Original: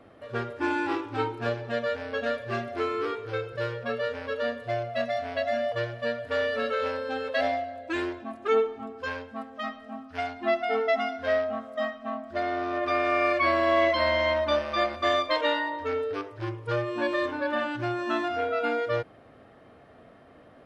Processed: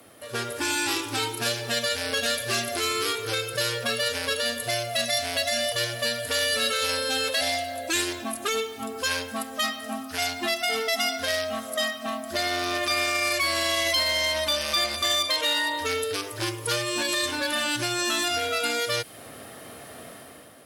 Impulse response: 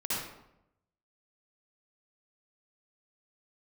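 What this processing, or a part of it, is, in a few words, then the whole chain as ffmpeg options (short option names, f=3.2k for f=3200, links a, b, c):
FM broadcast chain: -filter_complex "[0:a]highpass=74,dynaudnorm=f=150:g=7:m=9dB,acrossover=split=140|2300|4700[a][b][c][d];[a]acompressor=threshold=-42dB:ratio=4[e];[b]acompressor=threshold=-29dB:ratio=4[f];[c]acompressor=threshold=-34dB:ratio=4[g];[d]acompressor=threshold=-42dB:ratio=4[h];[e][f][g][h]amix=inputs=4:normalize=0,aemphasis=mode=production:type=75fm,alimiter=limit=-19dB:level=0:latency=1:release=25,asoftclip=type=hard:threshold=-22dB,lowpass=f=15k:w=0.5412,lowpass=f=15k:w=1.3066,aemphasis=mode=production:type=75fm,volume=1dB"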